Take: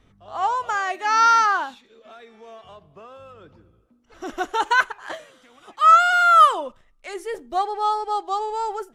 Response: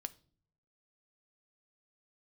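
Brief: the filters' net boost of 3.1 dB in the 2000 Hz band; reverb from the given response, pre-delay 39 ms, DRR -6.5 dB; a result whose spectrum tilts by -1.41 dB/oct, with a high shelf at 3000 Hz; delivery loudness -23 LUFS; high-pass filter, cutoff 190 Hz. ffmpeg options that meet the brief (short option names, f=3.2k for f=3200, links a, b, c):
-filter_complex "[0:a]highpass=190,equalizer=f=2k:t=o:g=7.5,highshelf=f=3k:g=-7.5,asplit=2[a][b];[1:a]atrim=start_sample=2205,adelay=39[c];[b][c]afir=irnorm=-1:irlink=0,volume=9.5dB[d];[a][d]amix=inputs=2:normalize=0,volume=-13dB"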